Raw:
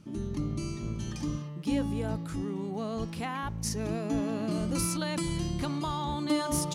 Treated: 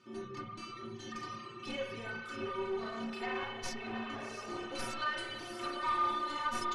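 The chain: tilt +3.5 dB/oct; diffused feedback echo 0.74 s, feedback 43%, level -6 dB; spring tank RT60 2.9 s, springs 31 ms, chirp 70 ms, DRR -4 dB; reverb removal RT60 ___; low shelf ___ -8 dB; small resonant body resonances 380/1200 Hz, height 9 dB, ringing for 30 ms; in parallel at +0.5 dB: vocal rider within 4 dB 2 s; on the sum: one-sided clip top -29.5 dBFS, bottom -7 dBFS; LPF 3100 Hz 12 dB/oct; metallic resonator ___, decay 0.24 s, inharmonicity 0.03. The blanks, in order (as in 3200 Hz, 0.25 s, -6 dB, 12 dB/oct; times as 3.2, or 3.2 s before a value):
1.4 s, 300 Hz, 110 Hz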